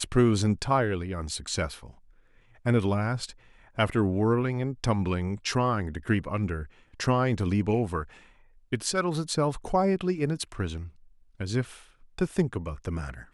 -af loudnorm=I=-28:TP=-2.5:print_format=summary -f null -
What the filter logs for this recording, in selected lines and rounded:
Input Integrated:    -28.6 LUFS
Input True Peak:      -9.3 dBTP
Input LRA:             5.8 LU
Input Threshold:     -39.4 LUFS